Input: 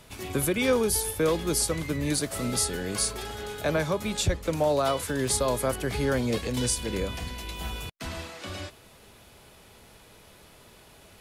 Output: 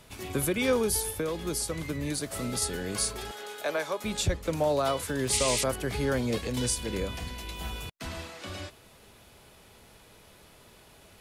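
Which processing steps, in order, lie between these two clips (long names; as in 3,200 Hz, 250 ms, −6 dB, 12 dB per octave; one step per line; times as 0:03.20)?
0:01.06–0:02.62: downward compressor 4 to 1, threshold −26 dBFS, peak gain reduction 6 dB
0:03.31–0:04.04: high-pass filter 450 Hz 12 dB per octave
0:05.32–0:05.64: sound drawn into the spectrogram noise 1,900–9,800 Hz −28 dBFS
level −2 dB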